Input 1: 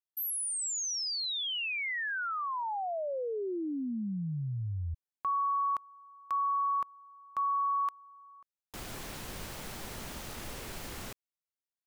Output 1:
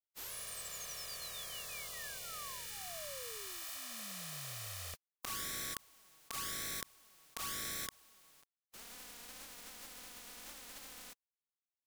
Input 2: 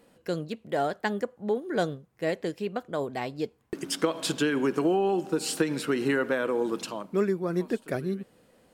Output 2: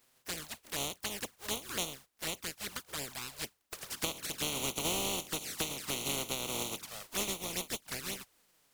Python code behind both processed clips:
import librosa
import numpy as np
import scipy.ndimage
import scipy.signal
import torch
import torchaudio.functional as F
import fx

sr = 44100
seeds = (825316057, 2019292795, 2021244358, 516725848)

y = fx.spec_flatten(x, sr, power=0.18)
y = fx.env_flanger(y, sr, rest_ms=8.3, full_db=-25.0)
y = fx.doppler_dist(y, sr, depth_ms=0.11)
y = y * librosa.db_to_amplitude(-5.5)